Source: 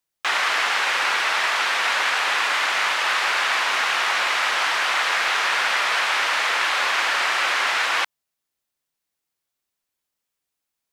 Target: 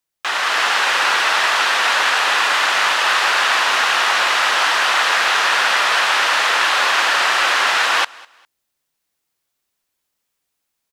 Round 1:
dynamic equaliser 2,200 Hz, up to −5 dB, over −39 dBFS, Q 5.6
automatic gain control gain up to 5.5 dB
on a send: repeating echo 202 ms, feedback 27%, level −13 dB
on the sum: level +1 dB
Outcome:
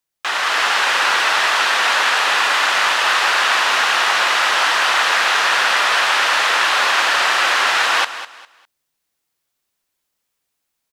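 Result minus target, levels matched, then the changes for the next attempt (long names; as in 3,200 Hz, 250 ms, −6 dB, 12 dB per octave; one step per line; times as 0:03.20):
echo-to-direct +10.5 dB
change: repeating echo 202 ms, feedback 27%, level −23.5 dB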